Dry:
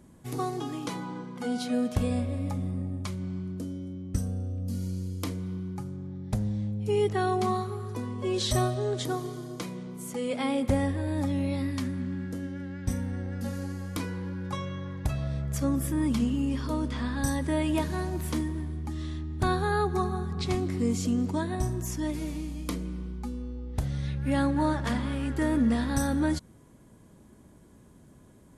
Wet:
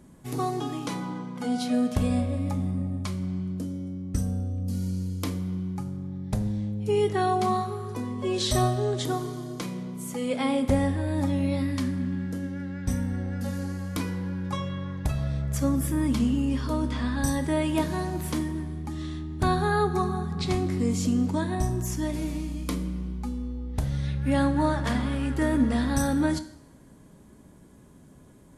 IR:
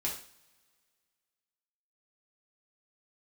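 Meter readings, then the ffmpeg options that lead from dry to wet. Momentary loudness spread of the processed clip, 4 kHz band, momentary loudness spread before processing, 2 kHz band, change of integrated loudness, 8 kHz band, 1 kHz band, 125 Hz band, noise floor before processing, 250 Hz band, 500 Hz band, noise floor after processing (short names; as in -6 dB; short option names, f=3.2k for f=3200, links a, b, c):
9 LU, +2.5 dB, 9 LU, +2.0 dB, +2.5 dB, +2.5 dB, +3.0 dB, +2.5 dB, -55 dBFS, +2.5 dB, +2.0 dB, -52 dBFS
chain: -filter_complex "[0:a]asplit=2[a][b];[1:a]atrim=start_sample=2205,asetrate=30870,aresample=44100[c];[b][c]afir=irnorm=-1:irlink=0,volume=-12.5dB[d];[a][d]amix=inputs=2:normalize=0"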